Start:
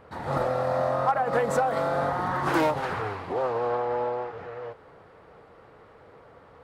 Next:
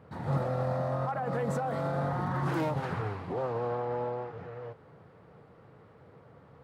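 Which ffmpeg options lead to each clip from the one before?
ffmpeg -i in.wav -af "highpass=60,alimiter=limit=-19dB:level=0:latency=1:release=18,equalizer=frequency=140:width_type=o:width=1.8:gain=13,volume=-7.5dB" out.wav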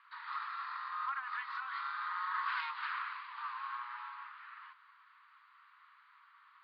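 ffmpeg -i in.wav -af "asuperpass=centerf=2200:order=20:qfactor=0.6,volume=3dB" out.wav

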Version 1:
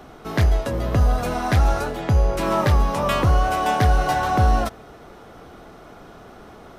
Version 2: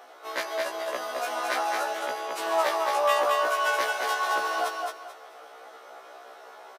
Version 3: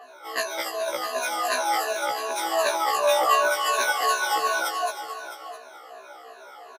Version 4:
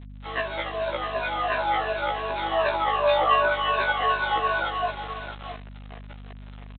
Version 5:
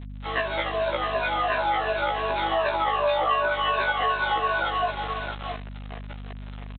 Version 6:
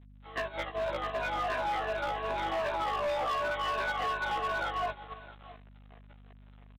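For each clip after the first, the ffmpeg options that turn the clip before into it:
ffmpeg -i in.wav -af "highpass=frequency=500:width=0.5412,highpass=frequency=500:width=1.3066,aecho=1:1:218|436|654|872:0.668|0.18|0.0487|0.0132,afftfilt=real='re*1.73*eq(mod(b,3),0)':imag='im*1.73*eq(mod(b,3),0)':win_size=2048:overlap=0.75" out.wav
ffmpeg -i in.wav -af "afftfilt=real='re*pow(10,20/40*sin(2*PI*(1.5*log(max(b,1)*sr/1024/100)/log(2)-(-2.7)*(pts-256)/sr)))':imag='im*pow(10,20/40*sin(2*PI*(1.5*log(max(b,1)*sr/1024/100)/log(2)-(-2.7)*(pts-256)/sr)))':win_size=1024:overlap=0.75,aecho=1:1:661:0.266,adynamicequalizer=threshold=0.01:dfrequency=4100:dqfactor=0.7:tfrequency=4100:tqfactor=0.7:attack=5:release=100:ratio=0.375:range=3:mode=boostabove:tftype=highshelf,volume=-2dB" out.wav
ffmpeg -i in.wav -af "aresample=8000,acrusher=bits=5:mix=0:aa=0.5,aresample=44100,aeval=exprs='val(0)+0.01*(sin(2*PI*50*n/s)+sin(2*PI*2*50*n/s)/2+sin(2*PI*3*50*n/s)/3+sin(2*PI*4*50*n/s)/4+sin(2*PI*5*50*n/s)/5)':channel_layout=same" out.wav
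ffmpeg -i in.wav -af "acompressor=threshold=-26dB:ratio=3,volume=4dB" out.wav
ffmpeg -i in.wav -af "aemphasis=mode=reproduction:type=50fm,agate=range=-11dB:threshold=-27dB:ratio=16:detection=peak,volume=22dB,asoftclip=hard,volume=-22dB,volume=-6dB" out.wav

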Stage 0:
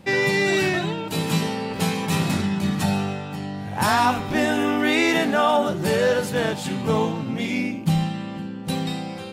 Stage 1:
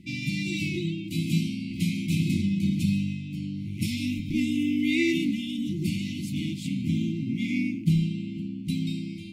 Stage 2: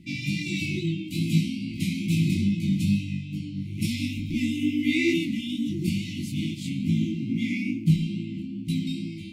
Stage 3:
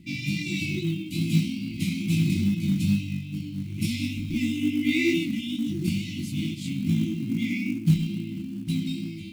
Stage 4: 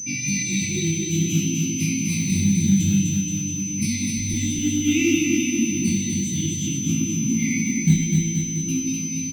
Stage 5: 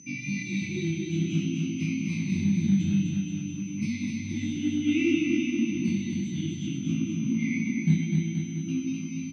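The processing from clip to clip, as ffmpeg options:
ffmpeg -i in.wav -af "afftfilt=real='re*(1-between(b*sr/4096,360,2000))':imag='im*(1-between(b*sr/4096,360,2000))':win_size=4096:overlap=0.75,highshelf=frequency=2400:gain=-8.5,volume=-1.5dB" out.wav
ffmpeg -i in.wav -af "flanger=delay=17.5:depth=5.1:speed=2.3,volume=4dB" out.wav
ffmpeg -i in.wav -af "acrusher=bits=7:mode=log:mix=0:aa=0.000001" out.wav
ffmpeg -i in.wav -af "afftfilt=real='re*pow(10,12/40*sin(2*PI*(0.92*log(max(b,1)*sr/1024/100)/log(2)-(-0.56)*(pts-256)/sr)))':imag='im*pow(10,12/40*sin(2*PI*(0.92*log(max(b,1)*sr/1024/100)/log(2)-(-0.56)*(pts-256)/sr)))':win_size=1024:overlap=0.75,aeval=exprs='val(0)+0.0355*sin(2*PI*6100*n/s)':channel_layout=same,aecho=1:1:250|475|677.5|859.8|1024:0.631|0.398|0.251|0.158|0.1" out.wav
ffmpeg -i in.wav -af "highpass=130,lowpass=2600,volume=-4dB" out.wav

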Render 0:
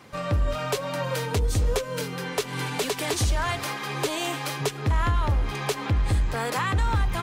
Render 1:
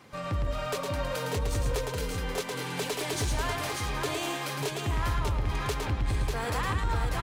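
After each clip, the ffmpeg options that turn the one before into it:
ffmpeg -i in.wav -af "aeval=exprs='0.158*(cos(1*acos(clip(val(0)/0.158,-1,1)))-cos(1*PI/2))+0.0112*(cos(5*acos(clip(val(0)/0.158,-1,1)))-cos(5*PI/2))':channel_layout=same,aecho=1:1:110|593:0.596|0.596,volume=-7dB" out.wav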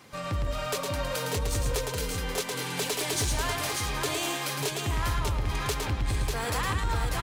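ffmpeg -i in.wav -af "highshelf=frequency=3400:gain=7" out.wav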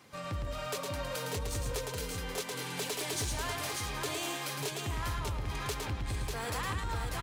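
ffmpeg -i in.wav -filter_complex "[0:a]highpass=45,asplit=2[link_01][link_02];[link_02]volume=27.5dB,asoftclip=hard,volume=-27.5dB,volume=-12dB[link_03];[link_01][link_03]amix=inputs=2:normalize=0,volume=-7.5dB" out.wav

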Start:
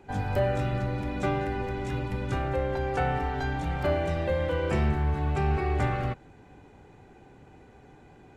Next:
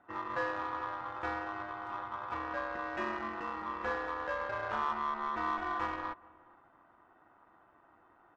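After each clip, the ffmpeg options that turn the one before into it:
ffmpeg -i in.wav -filter_complex "[0:a]aeval=exprs='val(0)*sin(2*PI*1100*n/s)':channel_layout=same,asplit=2[link_01][link_02];[link_02]adelay=419.8,volume=-22dB,highshelf=frequency=4000:gain=-9.45[link_03];[link_01][link_03]amix=inputs=2:normalize=0,adynamicsmooth=sensitivity=1.5:basefreq=1600,volume=-5.5dB" out.wav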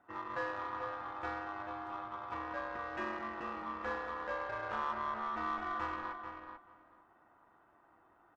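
ffmpeg -i in.wav -filter_complex "[0:a]asplit=2[link_01][link_02];[link_02]adelay=438,lowpass=frequency=3200:poles=1,volume=-7dB,asplit=2[link_03][link_04];[link_04]adelay=438,lowpass=frequency=3200:poles=1,volume=0.16,asplit=2[link_05][link_06];[link_06]adelay=438,lowpass=frequency=3200:poles=1,volume=0.16[link_07];[link_01][link_03][link_05][link_07]amix=inputs=4:normalize=0,volume=-3.5dB" out.wav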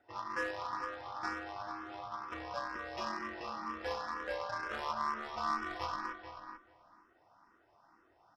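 ffmpeg -i in.wav -filter_complex "[0:a]lowpass=frequency=5300:width_type=q:width=11,asplit=2[link_01][link_02];[link_02]acrusher=bits=4:mix=0:aa=0.5,volume=-11.5dB[link_03];[link_01][link_03]amix=inputs=2:normalize=0,asplit=2[link_04][link_05];[link_05]afreqshift=2.1[link_06];[link_04][link_06]amix=inputs=2:normalize=1,volume=2dB" out.wav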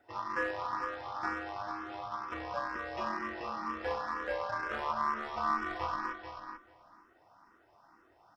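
ffmpeg -i in.wav -filter_complex "[0:a]acrossover=split=2800[link_01][link_02];[link_02]acompressor=threshold=-57dB:ratio=4:attack=1:release=60[link_03];[link_01][link_03]amix=inputs=2:normalize=0,volume=3.5dB" out.wav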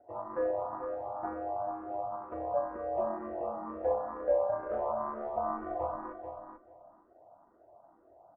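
ffmpeg -i in.wav -af "lowpass=frequency=640:width_type=q:width=4.9,volume=-1dB" out.wav

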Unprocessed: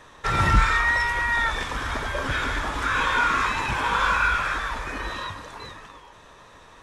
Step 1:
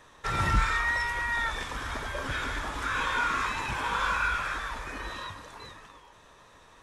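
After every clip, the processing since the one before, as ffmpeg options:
ffmpeg -i in.wav -af "highshelf=frequency=7100:gain=5,volume=-6.5dB" out.wav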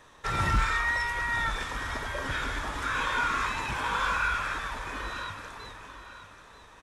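ffmpeg -i in.wav -af "aecho=1:1:937|1874|2811:0.224|0.0739|0.0244,asoftclip=type=hard:threshold=-17.5dB" out.wav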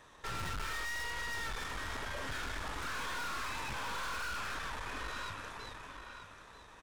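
ffmpeg -i in.wav -af "aeval=exprs='(tanh(89.1*val(0)+0.75)-tanh(0.75))/89.1':channel_layout=same,volume=1dB" out.wav

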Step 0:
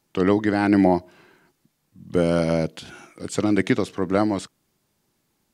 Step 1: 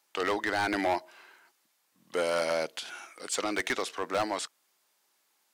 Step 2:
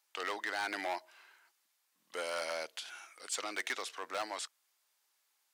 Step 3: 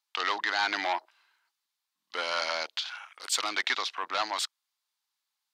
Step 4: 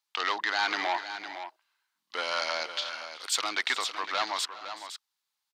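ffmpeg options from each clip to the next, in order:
ffmpeg -i in.wav -af "highpass=760,asoftclip=type=hard:threshold=-24dB,volume=1.5dB" out.wav
ffmpeg -i in.wav -af "highpass=frequency=1000:poles=1,volume=-4.5dB" out.wav
ffmpeg -i in.wav -af "afwtdn=0.00282,equalizer=frequency=500:width_type=o:width=1:gain=-6,equalizer=frequency=1000:width_type=o:width=1:gain=6,equalizer=frequency=4000:width_type=o:width=1:gain=8,volume=5.5dB" out.wav
ffmpeg -i in.wav -af "aecho=1:1:374|420|509:0.106|0.106|0.299" out.wav

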